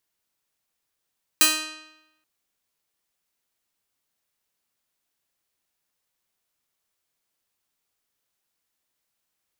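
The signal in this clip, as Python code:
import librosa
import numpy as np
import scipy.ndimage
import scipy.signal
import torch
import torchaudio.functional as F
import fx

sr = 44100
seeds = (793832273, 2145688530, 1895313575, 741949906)

y = fx.pluck(sr, length_s=0.83, note=63, decay_s=0.93, pick=0.43, brightness='bright')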